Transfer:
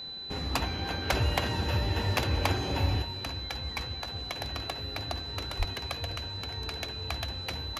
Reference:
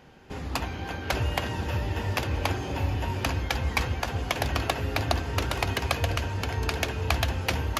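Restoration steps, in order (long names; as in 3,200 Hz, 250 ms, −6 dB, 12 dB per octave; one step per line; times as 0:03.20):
clipped peaks rebuilt −15 dBFS
notch filter 4,000 Hz, Q 30
high-pass at the plosives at 0:05.58
level correction +10 dB, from 0:03.02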